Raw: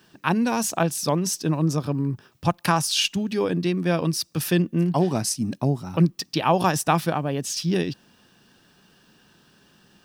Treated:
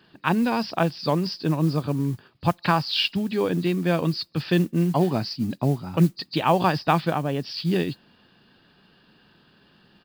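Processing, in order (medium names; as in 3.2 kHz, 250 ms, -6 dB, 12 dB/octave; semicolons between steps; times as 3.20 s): knee-point frequency compression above 3.7 kHz 1.5:1; resampled via 11.025 kHz; modulation noise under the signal 27 dB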